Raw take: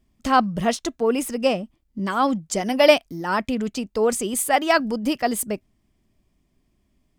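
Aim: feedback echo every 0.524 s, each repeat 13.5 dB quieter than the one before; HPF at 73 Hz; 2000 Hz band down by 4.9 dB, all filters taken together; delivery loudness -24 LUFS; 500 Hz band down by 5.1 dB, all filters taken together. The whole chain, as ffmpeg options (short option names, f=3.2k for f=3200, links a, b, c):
-af "highpass=73,equalizer=f=500:t=o:g=-6,equalizer=f=2k:t=o:g=-6,aecho=1:1:524|1048:0.211|0.0444,volume=1dB"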